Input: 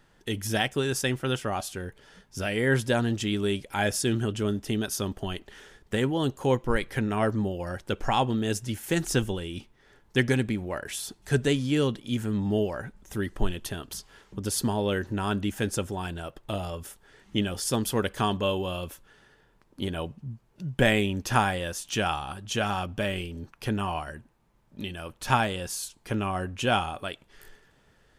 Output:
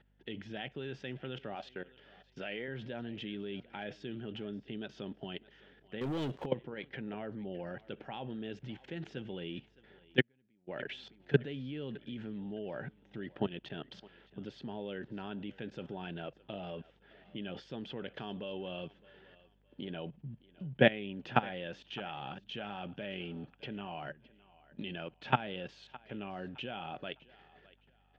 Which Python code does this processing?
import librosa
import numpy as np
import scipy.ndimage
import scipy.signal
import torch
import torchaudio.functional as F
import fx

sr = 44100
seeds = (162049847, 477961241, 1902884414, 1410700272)

p1 = fx.low_shelf(x, sr, hz=270.0, db=-11.0, at=(1.55, 2.68))
p2 = fx.level_steps(p1, sr, step_db=20)
p3 = scipy.signal.sosfilt(scipy.signal.ellip(3, 1.0, 50, [140.0, 3200.0], 'bandpass', fs=sr, output='sos'), p2)
p4 = fx.peak_eq(p3, sr, hz=1100.0, db=-9.5, octaves=0.54)
p5 = p4 + fx.echo_thinned(p4, sr, ms=613, feedback_pct=30, hz=320.0, wet_db=-20.0, dry=0)
p6 = fx.leveller(p5, sr, passes=3, at=(6.01, 6.46))
p7 = fx.add_hum(p6, sr, base_hz=50, snr_db=31)
p8 = fx.upward_expand(p7, sr, threshold_db=-43.0, expansion=2.5, at=(10.18, 10.67), fade=0.02)
y = p8 * librosa.db_to_amplitude(1.0)